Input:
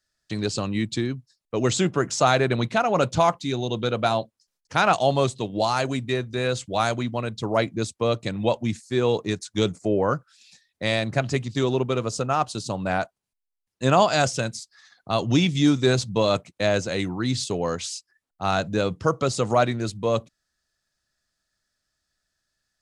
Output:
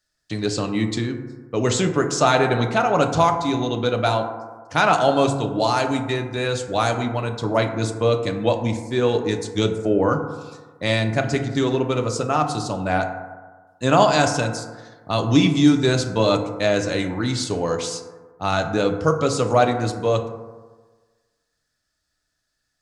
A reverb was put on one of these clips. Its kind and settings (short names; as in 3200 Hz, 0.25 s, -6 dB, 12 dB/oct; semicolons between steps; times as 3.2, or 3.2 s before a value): FDN reverb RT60 1.4 s, low-frequency decay 0.9×, high-frequency decay 0.3×, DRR 4.5 dB; gain +1.5 dB